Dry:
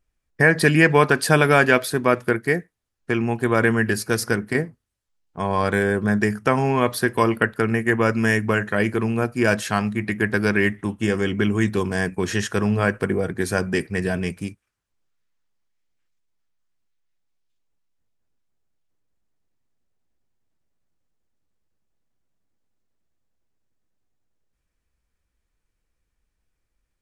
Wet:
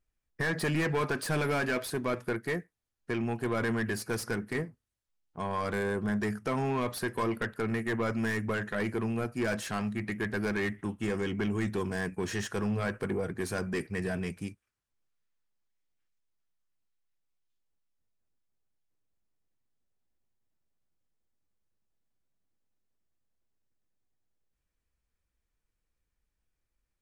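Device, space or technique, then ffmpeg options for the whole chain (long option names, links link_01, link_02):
saturation between pre-emphasis and de-emphasis: -af "highshelf=frequency=2300:gain=11,asoftclip=type=tanh:threshold=-16.5dB,highshelf=frequency=2300:gain=-11,volume=-7dB"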